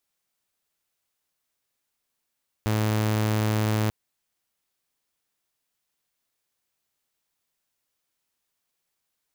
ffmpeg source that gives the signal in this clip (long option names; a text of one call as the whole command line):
ffmpeg -f lavfi -i "aevalsrc='0.112*(2*mod(108*t,1)-1)':duration=1.24:sample_rate=44100" out.wav